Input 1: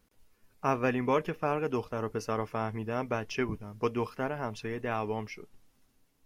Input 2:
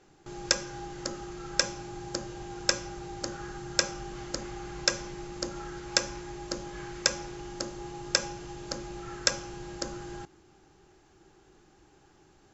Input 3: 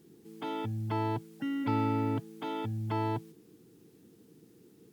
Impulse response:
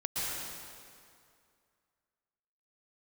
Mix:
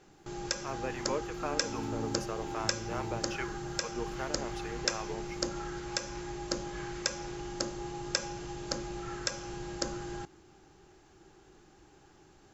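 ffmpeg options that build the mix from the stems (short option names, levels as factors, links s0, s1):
-filter_complex "[0:a]highpass=350,dynaudnorm=f=140:g=11:m=2.51,acrossover=split=610[s0][s1];[s0]aeval=exprs='val(0)*(1-0.7/2+0.7/2*cos(2*PI*2.5*n/s))':c=same[s2];[s1]aeval=exprs='val(0)*(1-0.7/2-0.7/2*cos(2*PI*2.5*n/s))':c=same[s3];[s2][s3]amix=inputs=2:normalize=0,volume=0.316[s4];[1:a]volume=1.12[s5];[2:a]equalizer=f=180:w=1.3:g=13.5,volume=0.211,afade=t=in:st=1.28:d=0.61:silence=0.316228[s6];[s4][s5][s6]amix=inputs=3:normalize=0,alimiter=limit=0.299:level=0:latency=1:release=233"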